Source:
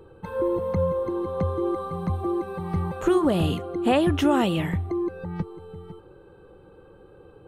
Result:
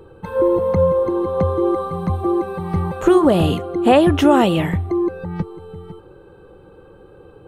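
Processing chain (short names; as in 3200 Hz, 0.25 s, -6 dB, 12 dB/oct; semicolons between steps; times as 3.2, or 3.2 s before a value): dynamic EQ 620 Hz, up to +4 dB, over -32 dBFS, Q 0.77; gain +5.5 dB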